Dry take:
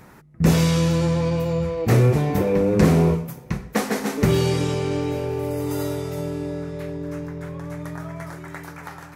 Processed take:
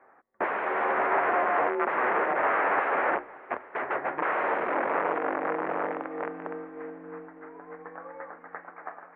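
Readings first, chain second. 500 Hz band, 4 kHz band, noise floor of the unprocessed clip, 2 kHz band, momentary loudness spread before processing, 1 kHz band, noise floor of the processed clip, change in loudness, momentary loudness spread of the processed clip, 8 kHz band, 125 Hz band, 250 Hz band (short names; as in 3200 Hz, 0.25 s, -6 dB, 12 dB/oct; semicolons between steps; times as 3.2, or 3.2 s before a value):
-6.5 dB, under -15 dB, -44 dBFS, +4.5 dB, 16 LU, +6.0 dB, -53 dBFS, -6.0 dB, 18 LU, under -40 dB, -35.0 dB, -16.0 dB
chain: wrapped overs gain 19.5 dB; air absorption 360 m; mistuned SSB -120 Hz 550–2200 Hz; diffused feedback echo 0.655 s, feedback 45%, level -16 dB; upward expander 1.5:1, over -47 dBFS; gain +5.5 dB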